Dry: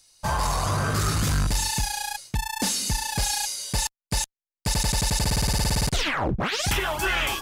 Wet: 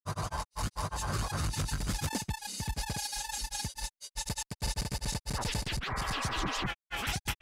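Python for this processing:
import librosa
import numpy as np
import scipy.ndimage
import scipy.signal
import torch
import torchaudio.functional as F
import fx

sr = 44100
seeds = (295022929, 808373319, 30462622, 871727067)

y = fx.tremolo_shape(x, sr, shape='saw_up', hz=0.73, depth_pct=35)
y = fx.granulator(y, sr, seeds[0], grain_ms=100.0, per_s=20.0, spray_ms=832.0, spread_st=0)
y = fx.spec_repair(y, sr, seeds[1], start_s=5.93, length_s=0.7, low_hz=410.0, high_hz=2400.0, source='before')
y = F.gain(torch.from_numpy(y), -6.0).numpy()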